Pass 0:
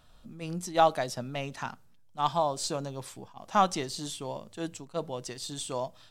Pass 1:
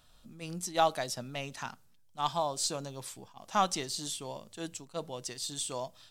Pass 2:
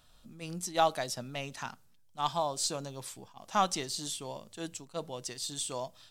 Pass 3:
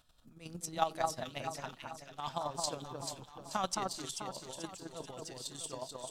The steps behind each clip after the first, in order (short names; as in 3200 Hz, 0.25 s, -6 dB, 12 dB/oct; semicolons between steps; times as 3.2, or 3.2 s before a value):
high shelf 2700 Hz +8.5 dB; gain -5 dB
nothing audible
chopper 11 Hz, depth 60%, duty 20%; echo with dull and thin repeats by turns 0.218 s, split 1700 Hz, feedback 67%, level -2.5 dB; gain -2 dB